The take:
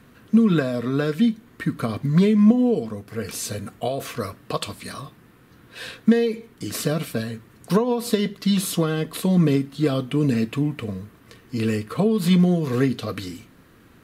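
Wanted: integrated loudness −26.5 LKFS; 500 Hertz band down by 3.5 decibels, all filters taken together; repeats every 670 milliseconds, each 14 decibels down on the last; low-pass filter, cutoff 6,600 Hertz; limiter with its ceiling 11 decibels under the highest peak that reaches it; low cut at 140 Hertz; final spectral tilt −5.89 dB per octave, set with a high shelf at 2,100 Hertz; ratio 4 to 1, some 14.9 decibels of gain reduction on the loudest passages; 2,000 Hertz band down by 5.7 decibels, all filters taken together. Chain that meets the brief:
high-pass filter 140 Hz
low-pass filter 6,600 Hz
parametric band 500 Hz −3.5 dB
parametric band 2,000 Hz −3.5 dB
high-shelf EQ 2,100 Hz −6.5 dB
downward compressor 4 to 1, threshold −31 dBFS
brickwall limiter −30 dBFS
repeating echo 670 ms, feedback 20%, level −14 dB
level +12.5 dB

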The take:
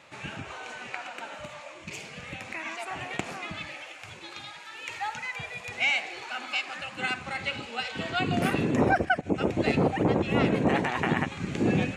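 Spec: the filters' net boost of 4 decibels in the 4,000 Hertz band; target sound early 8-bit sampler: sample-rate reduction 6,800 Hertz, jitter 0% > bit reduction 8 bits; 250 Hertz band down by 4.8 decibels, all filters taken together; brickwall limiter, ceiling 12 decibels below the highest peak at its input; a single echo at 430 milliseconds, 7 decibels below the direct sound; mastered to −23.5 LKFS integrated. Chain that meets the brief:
parametric band 250 Hz −6.5 dB
parametric band 4,000 Hz +6 dB
brickwall limiter −21 dBFS
single-tap delay 430 ms −7 dB
sample-rate reduction 6,800 Hz, jitter 0%
bit reduction 8 bits
level +8.5 dB

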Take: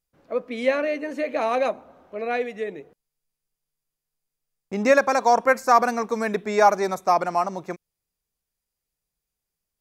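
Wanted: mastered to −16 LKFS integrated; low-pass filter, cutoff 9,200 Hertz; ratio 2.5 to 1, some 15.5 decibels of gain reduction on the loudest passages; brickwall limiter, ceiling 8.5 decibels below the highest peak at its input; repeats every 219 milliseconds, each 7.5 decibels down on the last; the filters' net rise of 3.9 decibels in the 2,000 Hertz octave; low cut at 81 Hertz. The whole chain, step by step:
high-pass filter 81 Hz
low-pass filter 9,200 Hz
parametric band 2,000 Hz +5 dB
downward compressor 2.5 to 1, threshold −35 dBFS
brickwall limiter −26 dBFS
repeating echo 219 ms, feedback 42%, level −7.5 dB
level +20.5 dB

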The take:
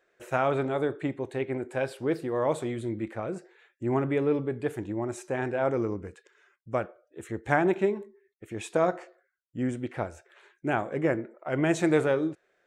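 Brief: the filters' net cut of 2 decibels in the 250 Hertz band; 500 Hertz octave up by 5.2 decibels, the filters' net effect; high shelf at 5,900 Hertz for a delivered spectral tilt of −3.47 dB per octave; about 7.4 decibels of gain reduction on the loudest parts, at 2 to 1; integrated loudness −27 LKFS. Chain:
parametric band 250 Hz −7.5 dB
parametric band 500 Hz +8.5 dB
high-shelf EQ 5,900 Hz +4.5 dB
downward compressor 2 to 1, threshold −28 dBFS
level +4 dB

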